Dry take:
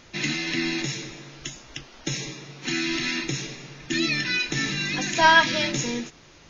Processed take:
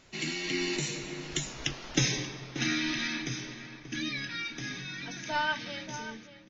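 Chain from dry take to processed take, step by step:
source passing by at 0:01.71, 24 m/s, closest 10 metres
slap from a distant wall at 100 metres, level −11 dB
level +4.5 dB

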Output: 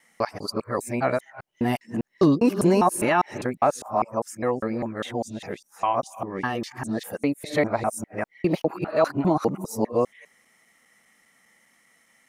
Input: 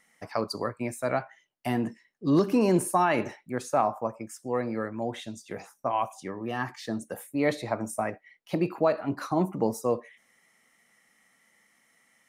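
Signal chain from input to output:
reversed piece by piece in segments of 201 ms
level +4 dB

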